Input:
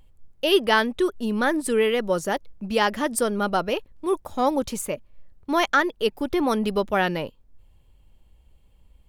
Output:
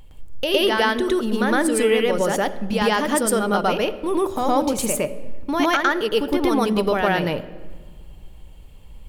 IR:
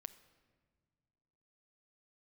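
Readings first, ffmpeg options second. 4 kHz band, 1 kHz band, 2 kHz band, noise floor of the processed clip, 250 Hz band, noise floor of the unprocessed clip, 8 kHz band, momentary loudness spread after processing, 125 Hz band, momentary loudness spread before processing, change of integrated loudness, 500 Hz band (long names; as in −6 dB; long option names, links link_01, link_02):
+3.0 dB, +3.0 dB, +2.5 dB, −42 dBFS, +4.0 dB, −58 dBFS, +6.0 dB, 6 LU, +5.0 dB, 8 LU, +3.0 dB, +3.5 dB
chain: -filter_complex "[0:a]bandreject=frequency=62.35:width_type=h:width=4,bandreject=frequency=124.7:width_type=h:width=4,bandreject=frequency=187.05:width_type=h:width=4,bandreject=frequency=249.4:width_type=h:width=4,bandreject=frequency=311.75:width_type=h:width=4,bandreject=frequency=374.1:width_type=h:width=4,bandreject=frequency=436.45:width_type=h:width=4,bandreject=frequency=498.8:width_type=h:width=4,bandreject=frequency=561.15:width_type=h:width=4,bandreject=frequency=623.5:width_type=h:width=4,bandreject=frequency=685.85:width_type=h:width=4,acompressor=threshold=-35dB:ratio=2.5,asplit=2[link_01][link_02];[1:a]atrim=start_sample=2205,adelay=111[link_03];[link_02][link_03]afir=irnorm=-1:irlink=0,volume=8.5dB[link_04];[link_01][link_04]amix=inputs=2:normalize=0,volume=9dB"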